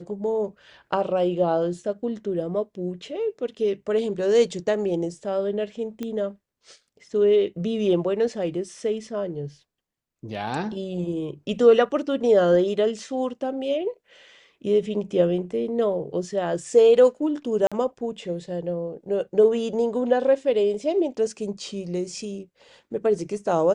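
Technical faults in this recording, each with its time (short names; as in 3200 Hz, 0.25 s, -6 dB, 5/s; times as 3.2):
6.03 pop -18 dBFS
17.67–17.72 gap 46 ms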